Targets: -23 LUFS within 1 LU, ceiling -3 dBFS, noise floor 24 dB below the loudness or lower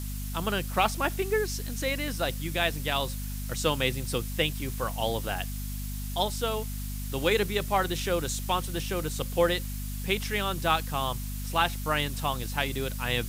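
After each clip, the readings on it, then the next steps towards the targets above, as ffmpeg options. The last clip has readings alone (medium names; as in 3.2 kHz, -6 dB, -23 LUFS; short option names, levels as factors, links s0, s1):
hum 50 Hz; highest harmonic 250 Hz; hum level -32 dBFS; noise floor -34 dBFS; noise floor target -54 dBFS; loudness -29.5 LUFS; peak level -10.5 dBFS; loudness target -23.0 LUFS
-> -af "bandreject=f=50:t=h:w=4,bandreject=f=100:t=h:w=4,bandreject=f=150:t=h:w=4,bandreject=f=200:t=h:w=4,bandreject=f=250:t=h:w=4"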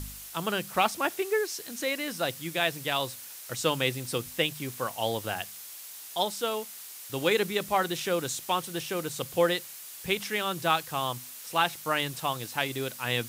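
hum not found; noise floor -44 dBFS; noise floor target -54 dBFS
-> -af "afftdn=nr=10:nf=-44"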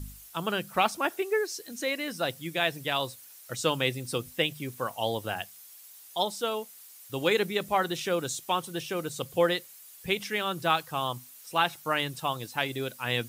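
noise floor -51 dBFS; noise floor target -54 dBFS
-> -af "afftdn=nr=6:nf=-51"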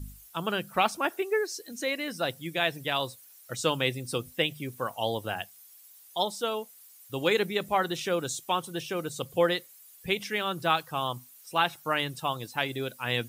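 noise floor -54 dBFS; loudness -30.0 LUFS; peak level -11.0 dBFS; loudness target -23.0 LUFS
-> -af "volume=2.24"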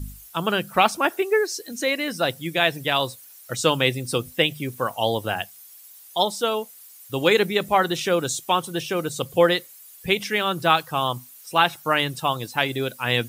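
loudness -23.0 LUFS; peak level -4.0 dBFS; noise floor -47 dBFS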